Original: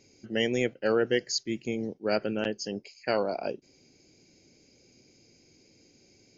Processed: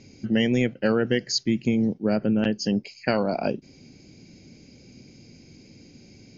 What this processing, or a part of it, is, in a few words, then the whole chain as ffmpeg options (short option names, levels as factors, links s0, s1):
jukebox: -filter_complex "[0:a]asplit=3[s0][s1][s2];[s0]afade=t=out:st=2.02:d=0.02[s3];[s1]equalizer=f=3400:w=0.35:g=-9,afade=t=in:st=2.02:d=0.02,afade=t=out:st=2.42:d=0.02[s4];[s2]afade=t=in:st=2.42:d=0.02[s5];[s3][s4][s5]amix=inputs=3:normalize=0,lowpass=5500,lowshelf=f=290:t=q:w=1.5:g=6.5,acompressor=threshold=0.0398:ratio=3,volume=2.66"